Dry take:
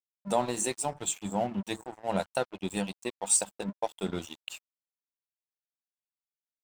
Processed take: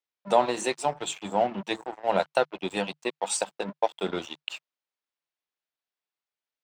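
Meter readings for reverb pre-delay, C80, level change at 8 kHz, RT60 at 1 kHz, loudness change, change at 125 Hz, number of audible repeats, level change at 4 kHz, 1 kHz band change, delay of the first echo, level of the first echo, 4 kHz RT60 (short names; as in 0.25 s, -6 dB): none, none, -5.5 dB, none, +3.0 dB, -3.0 dB, none, +5.0 dB, +7.0 dB, none, none, none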